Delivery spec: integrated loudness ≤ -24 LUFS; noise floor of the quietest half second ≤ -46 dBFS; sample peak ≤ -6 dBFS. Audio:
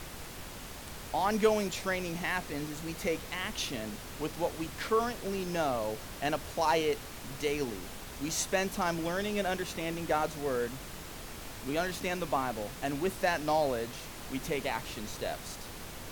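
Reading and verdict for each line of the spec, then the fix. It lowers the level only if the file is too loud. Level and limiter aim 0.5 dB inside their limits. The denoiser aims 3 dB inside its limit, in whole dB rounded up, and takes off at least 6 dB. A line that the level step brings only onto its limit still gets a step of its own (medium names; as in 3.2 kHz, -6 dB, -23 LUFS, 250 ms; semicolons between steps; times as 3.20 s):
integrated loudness -33.5 LUFS: pass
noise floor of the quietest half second -44 dBFS: fail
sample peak -13.5 dBFS: pass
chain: noise reduction 6 dB, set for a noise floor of -44 dBFS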